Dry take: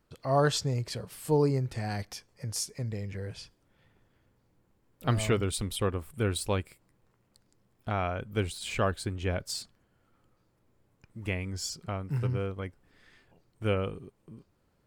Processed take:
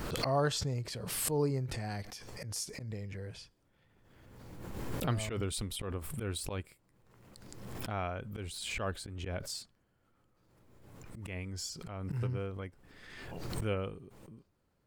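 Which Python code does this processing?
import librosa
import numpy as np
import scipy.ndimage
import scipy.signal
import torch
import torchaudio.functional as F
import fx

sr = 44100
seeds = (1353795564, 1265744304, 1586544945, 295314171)

y = fx.auto_swell(x, sr, attack_ms=108.0)
y = fx.pre_swell(y, sr, db_per_s=33.0)
y = y * librosa.db_to_amplitude(-5.5)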